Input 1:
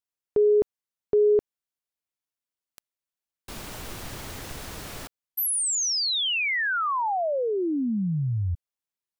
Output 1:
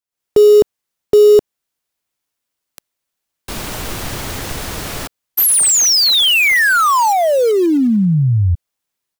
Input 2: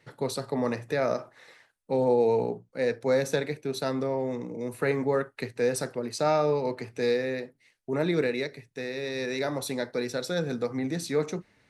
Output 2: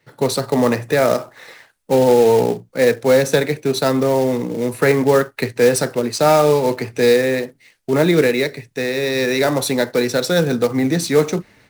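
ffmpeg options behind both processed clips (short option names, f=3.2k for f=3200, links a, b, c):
-filter_complex "[0:a]acrossover=split=410[a][b];[b]acrusher=bits=3:mode=log:mix=0:aa=0.000001[c];[a][c]amix=inputs=2:normalize=0,dynaudnorm=f=110:g=3:m=13dB"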